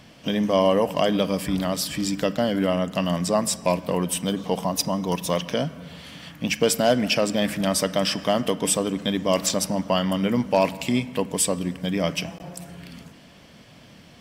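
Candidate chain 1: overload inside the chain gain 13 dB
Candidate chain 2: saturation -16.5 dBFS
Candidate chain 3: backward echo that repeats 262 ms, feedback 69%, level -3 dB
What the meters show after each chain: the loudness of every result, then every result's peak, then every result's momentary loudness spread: -24.0 LUFS, -26.0 LUFS, -21.0 LUFS; -13.0 dBFS, -16.5 dBFS, -5.0 dBFS; 10 LU, 9 LU, 10 LU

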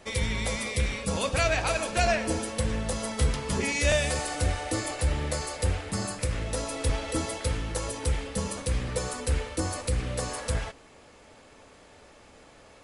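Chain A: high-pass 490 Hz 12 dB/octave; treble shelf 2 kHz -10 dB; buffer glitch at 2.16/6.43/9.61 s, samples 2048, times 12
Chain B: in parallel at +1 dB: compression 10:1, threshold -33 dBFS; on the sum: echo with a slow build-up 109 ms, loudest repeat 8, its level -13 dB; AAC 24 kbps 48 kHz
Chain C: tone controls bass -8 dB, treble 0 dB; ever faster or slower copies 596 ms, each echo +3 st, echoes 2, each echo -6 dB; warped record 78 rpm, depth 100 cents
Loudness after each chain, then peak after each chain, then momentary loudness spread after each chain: -35.5 LUFS, -23.0 LUFS, -29.5 LUFS; -17.0 dBFS, -7.0 dBFS, -11.5 dBFS; 11 LU, 10 LU, 8 LU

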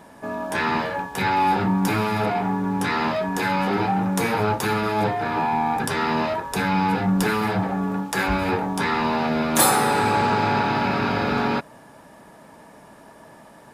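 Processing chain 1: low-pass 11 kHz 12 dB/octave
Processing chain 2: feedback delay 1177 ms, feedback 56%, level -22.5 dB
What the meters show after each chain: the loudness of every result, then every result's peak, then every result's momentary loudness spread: -22.0 LUFS, -22.0 LUFS; -4.5 dBFS, -3.5 dBFS; 5 LU, 8 LU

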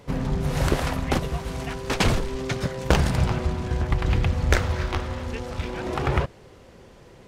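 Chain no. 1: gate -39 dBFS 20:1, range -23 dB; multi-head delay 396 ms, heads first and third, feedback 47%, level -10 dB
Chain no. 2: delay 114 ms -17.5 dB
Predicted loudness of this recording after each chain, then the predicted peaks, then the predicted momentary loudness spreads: -25.0 LUFS, -25.5 LUFS; -2.0 dBFS, -2.5 dBFS; 7 LU, 9 LU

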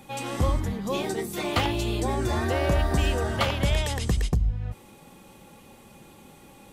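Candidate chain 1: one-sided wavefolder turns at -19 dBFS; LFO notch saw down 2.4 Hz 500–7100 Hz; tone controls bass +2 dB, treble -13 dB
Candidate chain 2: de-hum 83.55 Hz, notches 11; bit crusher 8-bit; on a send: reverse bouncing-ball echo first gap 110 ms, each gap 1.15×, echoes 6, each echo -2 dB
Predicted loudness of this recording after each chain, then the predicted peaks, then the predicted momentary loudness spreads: -27.0 LUFS, -23.5 LUFS; -12.5 dBFS, -8.5 dBFS; 7 LU, 11 LU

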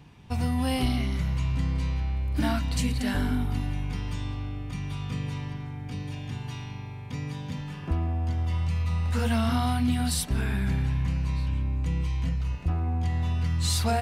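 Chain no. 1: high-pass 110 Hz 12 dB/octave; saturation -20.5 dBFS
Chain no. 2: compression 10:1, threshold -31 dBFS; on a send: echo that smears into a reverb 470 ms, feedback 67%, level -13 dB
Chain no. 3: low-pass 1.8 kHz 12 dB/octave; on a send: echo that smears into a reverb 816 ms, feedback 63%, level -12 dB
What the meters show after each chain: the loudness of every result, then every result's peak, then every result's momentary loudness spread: -33.0 LUFS, -36.0 LUFS, -29.0 LUFS; -21.0 dBFS, -22.5 dBFS, -15.0 dBFS; 9 LU, 3 LU, 8 LU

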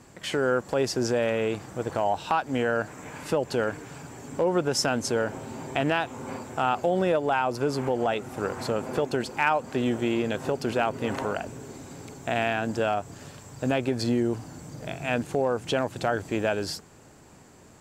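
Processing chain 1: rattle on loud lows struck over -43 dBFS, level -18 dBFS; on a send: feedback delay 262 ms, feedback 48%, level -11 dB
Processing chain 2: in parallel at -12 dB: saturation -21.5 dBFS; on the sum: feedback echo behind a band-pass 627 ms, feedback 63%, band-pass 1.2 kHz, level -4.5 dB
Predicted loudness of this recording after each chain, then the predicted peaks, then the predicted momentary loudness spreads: -26.0 LUFS, -25.5 LUFS; -10.0 dBFS, -9.0 dBFS; 7 LU, 9 LU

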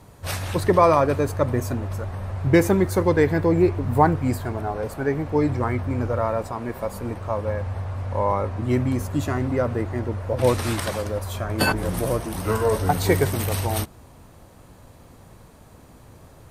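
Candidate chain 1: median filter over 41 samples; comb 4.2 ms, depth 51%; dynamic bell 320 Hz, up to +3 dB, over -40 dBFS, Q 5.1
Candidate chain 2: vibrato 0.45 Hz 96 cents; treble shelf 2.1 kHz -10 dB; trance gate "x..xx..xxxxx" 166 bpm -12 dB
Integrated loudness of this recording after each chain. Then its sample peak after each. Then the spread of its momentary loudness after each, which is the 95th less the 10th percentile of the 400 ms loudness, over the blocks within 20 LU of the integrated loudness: -24.5 LUFS, -25.0 LUFS; -5.5 dBFS, -5.0 dBFS; 11 LU, 12 LU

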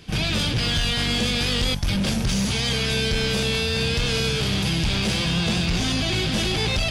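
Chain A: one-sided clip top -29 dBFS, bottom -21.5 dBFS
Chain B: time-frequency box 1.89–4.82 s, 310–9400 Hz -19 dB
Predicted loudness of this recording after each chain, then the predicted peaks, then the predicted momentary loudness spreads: -26.0 LUFS, -23.5 LUFS; -20.0 dBFS, -15.5 dBFS; 1 LU, 7 LU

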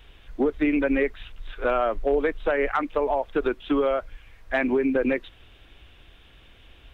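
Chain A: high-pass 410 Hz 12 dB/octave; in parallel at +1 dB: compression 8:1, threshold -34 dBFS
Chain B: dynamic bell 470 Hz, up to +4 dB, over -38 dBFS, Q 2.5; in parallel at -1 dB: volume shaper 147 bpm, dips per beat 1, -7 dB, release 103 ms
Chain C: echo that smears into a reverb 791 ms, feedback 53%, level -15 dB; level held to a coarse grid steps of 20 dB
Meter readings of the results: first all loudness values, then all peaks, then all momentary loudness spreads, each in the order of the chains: -25.0 LUFS, -18.0 LUFS, -35.5 LUFS; -11.0 dBFS, -4.5 dBFS, -13.0 dBFS; 6 LU, 6 LU, 11 LU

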